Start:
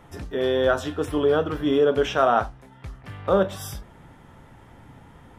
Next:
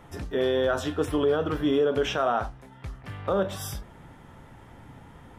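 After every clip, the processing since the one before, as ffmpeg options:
ffmpeg -i in.wav -af "alimiter=limit=-15.5dB:level=0:latency=1:release=63" out.wav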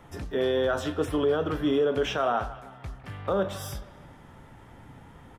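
ffmpeg -i in.wav -filter_complex "[0:a]acrossover=split=410|4300[link_01][link_02][link_03];[link_02]aecho=1:1:157|314|471|628|785:0.168|0.0856|0.0437|0.0223|0.0114[link_04];[link_03]asoftclip=type=tanh:threshold=-37.5dB[link_05];[link_01][link_04][link_05]amix=inputs=3:normalize=0,volume=-1dB" out.wav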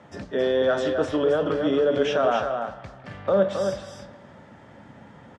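ffmpeg -i in.wav -filter_complex "[0:a]highpass=110,equalizer=frequency=210:width_type=q:width=4:gain=7,equalizer=frequency=580:width_type=q:width=4:gain=9,equalizer=frequency=1700:width_type=q:width=4:gain=4,equalizer=frequency=4600:width_type=q:width=4:gain=3,lowpass=frequency=7600:width=0.5412,lowpass=frequency=7600:width=1.3066,asplit=2[link_01][link_02];[link_02]aecho=0:1:270:0.501[link_03];[link_01][link_03]amix=inputs=2:normalize=0" out.wav

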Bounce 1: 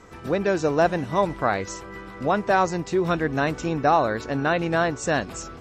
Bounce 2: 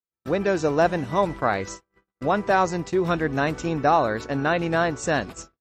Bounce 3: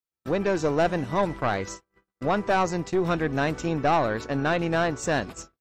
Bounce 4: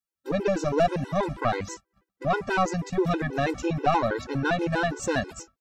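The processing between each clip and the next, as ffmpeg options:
ffmpeg -i in.wav -af "agate=range=-57dB:threshold=-33dB:ratio=16:detection=peak" out.wav
ffmpeg -i in.wav -af "aeval=exprs='(tanh(5.62*val(0)+0.35)-tanh(0.35))/5.62':channel_layout=same" out.wav
ffmpeg -i in.wav -af "afftfilt=real='re*gt(sin(2*PI*6.2*pts/sr)*(1-2*mod(floor(b*sr/1024/270),2)),0)':imag='im*gt(sin(2*PI*6.2*pts/sr)*(1-2*mod(floor(b*sr/1024/270),2)),0)':win_size=1024:overlap=0.75,volume=2.5dB" out.wav

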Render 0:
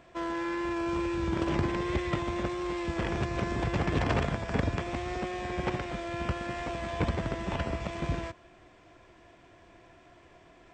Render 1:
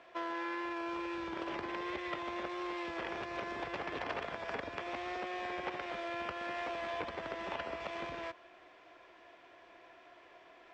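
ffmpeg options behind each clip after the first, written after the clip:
ffmpeg -i in.wav -filter_complex "[0:a]lowshelf=frequency=390:gain=-4.5,acompressor=threshold=-35dB:ratio=4,acrossover=split=320 5300:gain=0.141 1 0.0891[link_01][link_02][link_03];[link_01][link_02][link_03]amix=inputs=3:normalize=0,volume=1dB" out.wav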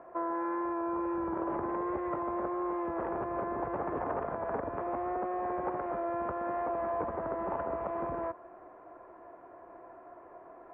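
ffmpeg -i in.wav -filter_complex "[0:a]lowpass=frequency=1200:width=0.5412,lowpass=frequency=1200:width=1.3066,asplit=2[link_01][link_02];[link_02]alimiter=level_in=13dB:limit=-24dB:level=0:latency=1:release=14,volume=-13dB,volume=-0.5dB[link_03];[link_01][link_03]amix=inputs=2:normalize=0,volume=3dB" out.wav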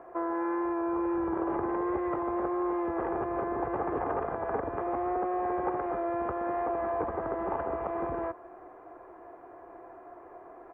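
ffmpeg -i in.wav -af "aecho=1:1:2.5:0.32,volume=2.5dB" out.wav

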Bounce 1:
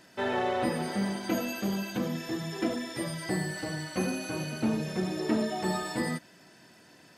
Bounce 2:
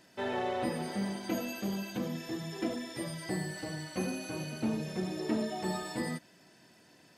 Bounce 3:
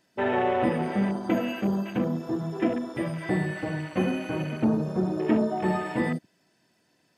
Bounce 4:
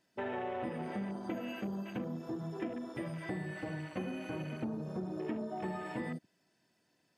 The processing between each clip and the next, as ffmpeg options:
ffmpeg -i in.wav -af "equalizer=frequency=1400:width_type=o:width=0.77:gain=-3,volume=-4dB" out.wav
ffmpeg -i in.wav -af "afwtdn=0.00562,volume=9dB" out.wav
ffmpeg -i in.wav -af "acompressor=threshold=-28dB:ratio=4,volume=-7.5dB" out.wav

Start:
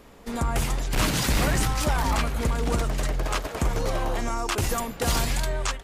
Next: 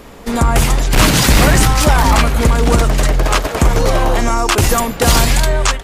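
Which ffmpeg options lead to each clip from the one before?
ffmpeg -i in.wav -af "acontrast=42,volume=7.5dB" out.wav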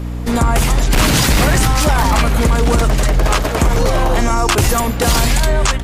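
ffmpeg -i in.wav -af "aeval=exprs='val(0)+0.0794*(sin(2*PI*60*n/s)+sin(2*PI*2*60*n/s)/2+sin(2*PI*3*60*n/s)/3+sin(2*PI*4*60*n/s)/4+sin(2*PI*5*60*n/s)/5)':channel_layout=same,alimiter=level_in=5dB:limit=-1dB:release=50:level=0:latency=1,volume=-4dB" out.wav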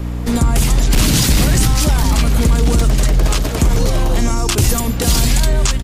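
ffmpeg -i in.wav -filter_complex "[0:a]acrossover=split=370|3000[link_01][link_02][link_03];[link_02]acompressor=threshold=-31dB:ratio=2.5[link_04];[link_01][link_04][link_03]amix=inputs=3:normalize=0,aecho=1:1:508:0.0708,volume=1dB" out.wav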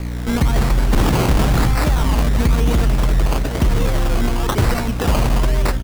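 ffmpeg -i in.wav -af "acrusher=samples=19:mix=1:aa=0.000001:lfo=1:lforange=11.4:lforate=1,volume=-2.5dB" out.wav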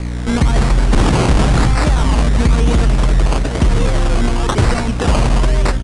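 ffmpeg -i in.wav -af "aresample=22050,aresample=44100,volume=3dB" out.wav

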